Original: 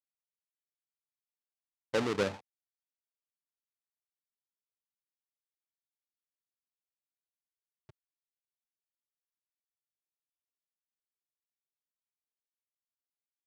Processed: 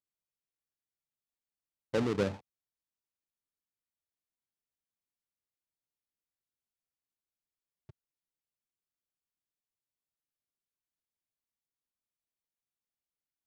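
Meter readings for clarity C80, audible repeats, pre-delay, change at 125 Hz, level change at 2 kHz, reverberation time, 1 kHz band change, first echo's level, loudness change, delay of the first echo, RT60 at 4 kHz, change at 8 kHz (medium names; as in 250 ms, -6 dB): no reverb, no echo, no reverb, +5.0 dB, -4.0 dB, no reverb, -3.0 dB, no echo, 0.0 dB, no echo, no reverb, -4.5 dB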